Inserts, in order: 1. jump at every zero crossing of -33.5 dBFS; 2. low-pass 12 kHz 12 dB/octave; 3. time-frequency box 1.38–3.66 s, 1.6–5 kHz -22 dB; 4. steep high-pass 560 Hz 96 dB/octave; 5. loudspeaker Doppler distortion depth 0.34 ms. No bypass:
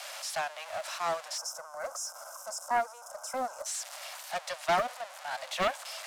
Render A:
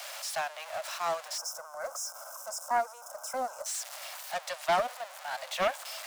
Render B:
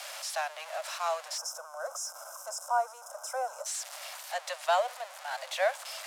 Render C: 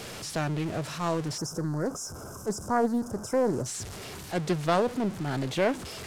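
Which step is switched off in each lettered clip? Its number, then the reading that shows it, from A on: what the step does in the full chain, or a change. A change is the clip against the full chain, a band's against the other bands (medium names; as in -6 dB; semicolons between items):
2, 250 Hz band -3.0 dB; 5, 500 Hz band +1.5 dB; 4, 125 Hz band +23.5 dB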